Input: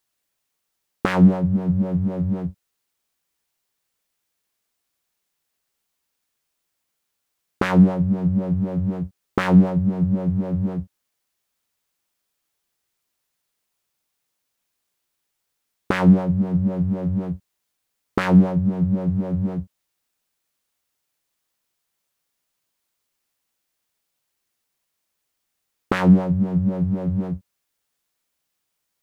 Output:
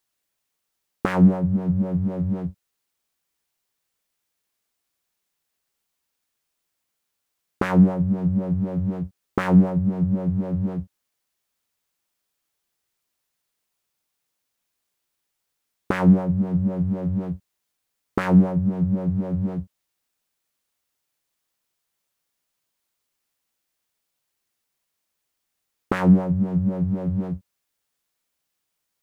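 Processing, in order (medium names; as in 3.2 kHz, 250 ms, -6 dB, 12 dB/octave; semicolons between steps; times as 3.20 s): dynamic bell 3.8 kHz, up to -6 dB, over -45 dBFS, Q 0.87; trim -1.5 dB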